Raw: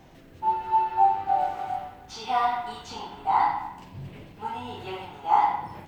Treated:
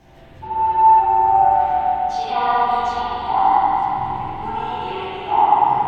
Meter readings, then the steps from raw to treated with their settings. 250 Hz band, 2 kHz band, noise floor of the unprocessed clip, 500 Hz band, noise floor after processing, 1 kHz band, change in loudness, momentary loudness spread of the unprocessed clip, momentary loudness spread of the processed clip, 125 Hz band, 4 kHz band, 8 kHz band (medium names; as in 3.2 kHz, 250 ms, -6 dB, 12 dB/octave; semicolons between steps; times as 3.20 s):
+9.0 dB, +6.5 dB, -50 dBFS, +10.0 dB, -43 dBFS, +9.5 dB, +8.5 dB, 17 LU, 12 LU, +8.0 dB, +6.5 dB, no reading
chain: low-pass that closes with the level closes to 1.1 kHz, closed at -18.5 dBFS; chorus voices 6, 0.9 Hz, delay 15 ms, depth 1.8 ms; spring tank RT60 3.4 s, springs 46/55 ms, chirp 25 ms, DRR -8 dB; trim +4 dB